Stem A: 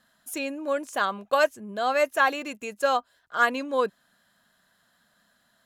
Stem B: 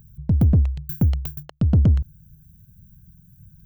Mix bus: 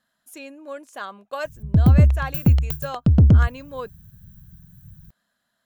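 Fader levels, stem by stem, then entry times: -8.0, +3.0 dB; 0.00, 1.45 s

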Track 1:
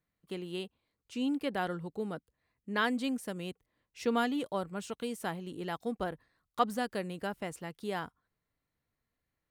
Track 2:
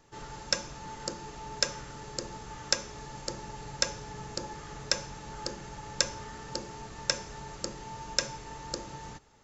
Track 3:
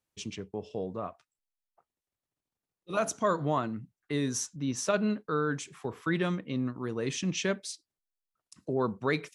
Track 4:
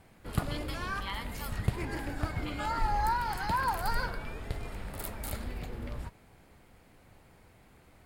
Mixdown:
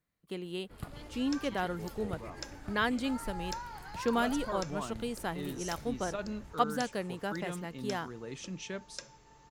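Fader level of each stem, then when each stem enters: 0.0, -16.0, -10.5, -12.0 dB; 0.00, 0.80, 1.25, 0.45 s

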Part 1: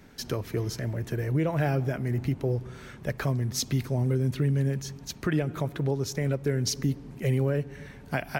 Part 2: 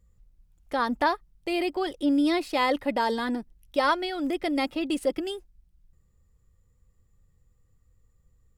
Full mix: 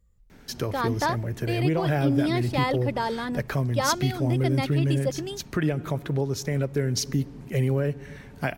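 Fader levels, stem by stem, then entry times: +1.5, -2.0 dB; 0.30, 0.00 s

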